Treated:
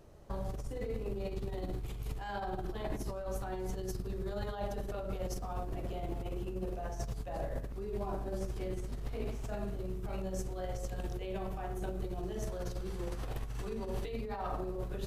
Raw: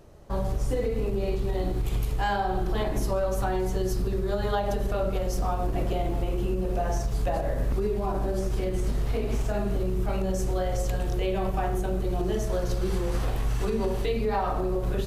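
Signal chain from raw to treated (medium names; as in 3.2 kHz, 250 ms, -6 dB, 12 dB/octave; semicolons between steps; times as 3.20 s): compressor with a negative ratio -28 dBFS, ratio -0.5; trim -8.5 dB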